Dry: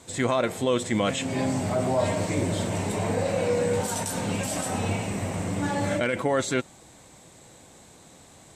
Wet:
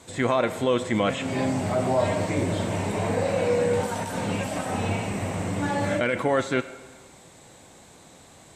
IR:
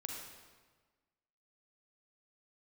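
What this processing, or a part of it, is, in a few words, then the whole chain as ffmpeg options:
filtered reverb send: -filter_complex "[0:a]acrossover=split=2900[a][b];[b]acompressor=threshold=-39dB:ratio=4:attack=1:release=60[c];[a][c]amix=inputs=2:normalize=0,asplit=2[d][e];[e]highpass=f=530:p=1,lowpass=5k[f];[1:a]atrim=start_sample=2205[g];[f][g]afir=irnorm=-1:irlink=0,volume=-6.5dB[h];[d][h]amix=inputs=2:normalize=0"

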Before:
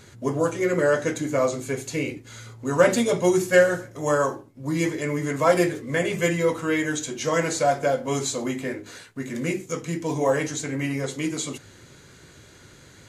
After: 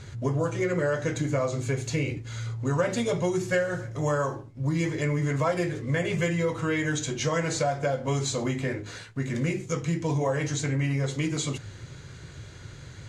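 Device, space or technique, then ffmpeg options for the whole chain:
jukebox: -af "lowpass=7k,lowshelf=f=170:t=q:w=1.5:g=7.5,acompressor=threshold=-25dB:ratio=4,volume=1.5dB"

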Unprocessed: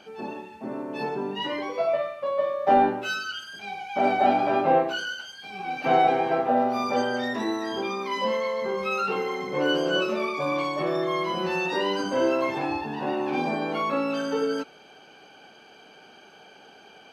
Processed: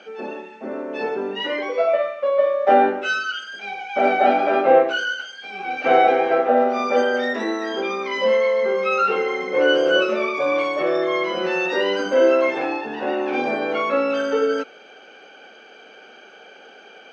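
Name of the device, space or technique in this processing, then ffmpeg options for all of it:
television speaker: -af "highpass=f=230:w=0.5412,highpass=f=230:w=1.3066,equalizer=f=300:t=q:w=4:g=-3,equalizer=f=510:t=q:w=4:g=6,equalizer=f=970:t=q:w=4:g=-7,equalizer=f=1.4k:t=q:w=4:g=5,equalizer=f=2.1k:t=q:w=4:g=4,equalizer=f=4.5k:t=q:w=4:g=-6,lowpass=f=6.5k:w=0.5412,lowpass=f=6.5k:w=1.3066,volume=4.5dB"

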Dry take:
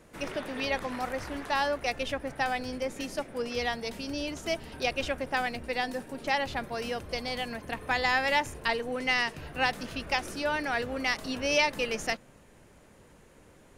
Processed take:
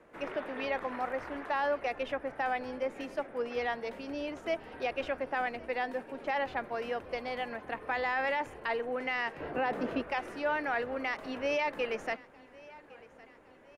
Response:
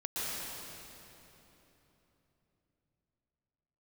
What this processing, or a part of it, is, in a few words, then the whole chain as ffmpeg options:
DJ mixer with the lows and highs turned down: -filter_complex "[0:a]asettb=1/sr,asplit=3[a][b][c];[a]atrim=end=9.404[d];[b]atrim=start=9.4:end=10.02,asetpts=PTS-STARTPTS,afade=t=in:d=0.004:c=qsin,afade=t=out:st=0.616:d=0.004:c=qsin,equalizer=f=340:w=0.37:g=11[e];[c]atrim=start=10.016[f];[d][e]acrossfade=d=0.004:c1=hsin:c2=qsin[g];[g][f]acrossfade=d=0.004:c1=qsin:c2=hsin,acrossover=split=280 2500:gain=0.251 1 0.126[h][i][j];[h][i][j]amix=inputs=3:normalize=0,alimiter=limit=-22.5dB:level=0:latency=1:release=12,aecho=1:1:1110|2220|3330|4440:0.0794|0.0421|0.0223|0.0118"

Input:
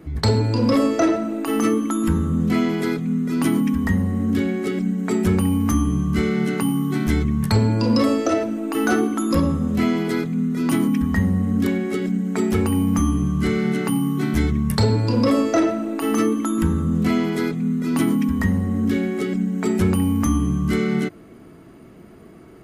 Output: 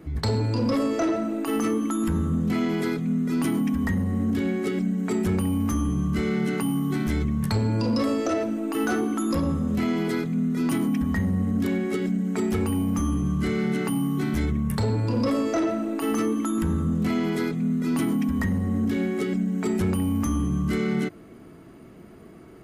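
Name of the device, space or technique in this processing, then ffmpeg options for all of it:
soft clipper into limiter: -filter_complex "[0:a]asoftclip=type=tanh:threshold=-10dB,alimiter=limit=-15.5dB:level=0:latency=1,asettb=1/sr,asplit=3[a][b][c];[a]atrim=end=14.454[d];[b]atrim=start=14.45:end=15.17,asetpts=PTS-STARTPTS,afade=t=in:d=0.004:c=qsin,afade=t=out:st=0.716:d=0.004:c=qsin,equalizer=f=4.8k:t=o:w=0.77:g=-6[e];[c]atrim=start=15.166[f];[d][e]acrossfade=d=0.004:c1=hsin:c2=qsin[g];[g][f]acrossfade=d=0.004:c1=qsin:c2=hsin,volume=-2dB"

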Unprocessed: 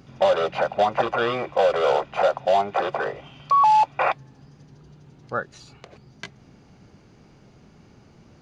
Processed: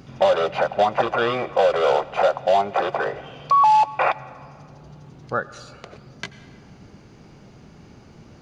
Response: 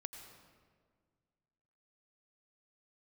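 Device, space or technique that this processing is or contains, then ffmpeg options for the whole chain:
ducked reverb: -filter_complex "[0:a]asplit=3[a][b][c];[1:a]atrim=start_sample=2205[d];[b][d]afir=irnorm=-1:irlink=0[e];[c]apad=whole_len=371069[f];[e][f]sidechaincompress=threshold=-32dB:ratio=3:attack=30:release=880,volume=2dB[g];[a][g]amix=inputs=2:normalize=0"

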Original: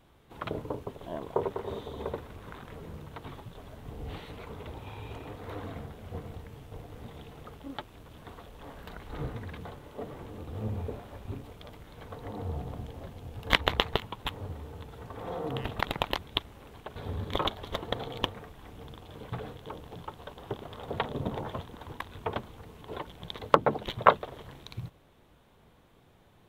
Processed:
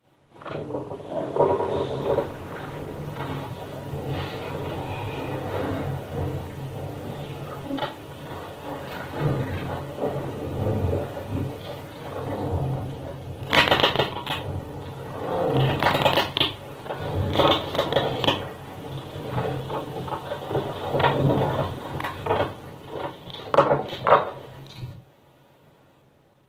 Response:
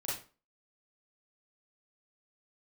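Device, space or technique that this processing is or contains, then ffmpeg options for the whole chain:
far-field microphone of a smart speaker: -filter_complex "[1:a]atrim=start_sample=2205[a];[0:a][a]afir=irnorm=-1:irlink=0,highpass=f=100:w=0.5412,highpass=f=100:w=1.3066,dynaudnorm=f=220:g=11:m=9.5dB" -ar 48000 -c:a libopus -b:a 16k

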